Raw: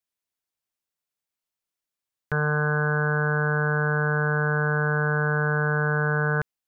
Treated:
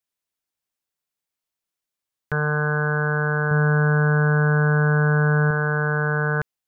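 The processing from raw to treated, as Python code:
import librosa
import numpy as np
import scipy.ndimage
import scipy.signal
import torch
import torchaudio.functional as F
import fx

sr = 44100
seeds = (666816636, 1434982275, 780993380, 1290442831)

y = fx.low_shelf(x, sr, hz=200.0, db=9.0, at=(3.51, 5.51))
y = y * 10.0 ** (1.5 / 20.0)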